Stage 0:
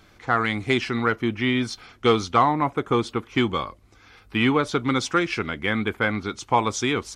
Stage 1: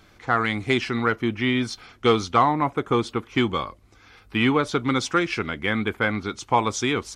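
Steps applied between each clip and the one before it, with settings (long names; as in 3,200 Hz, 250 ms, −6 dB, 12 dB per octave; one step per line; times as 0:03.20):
no processing that can be heard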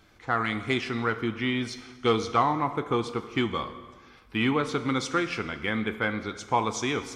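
dense smooth reverb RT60 1.5 s, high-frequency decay 0.8×, DRR 9.5 dB
level −5 dB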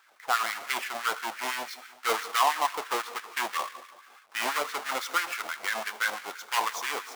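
each half-wave held at its own peak
auto-filter high-pass sine 6 Hz 670–1,700 Hz
level −6 dB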